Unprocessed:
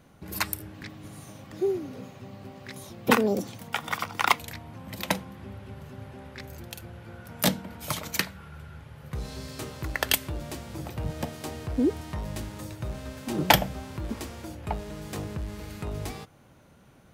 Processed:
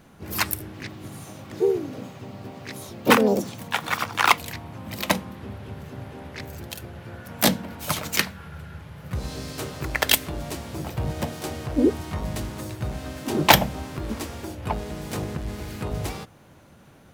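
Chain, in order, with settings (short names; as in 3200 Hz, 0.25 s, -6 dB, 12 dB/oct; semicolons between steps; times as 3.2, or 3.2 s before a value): notches 60/120/180/240 Hz; harmoniser +3 st -6 dB; gain +4 dB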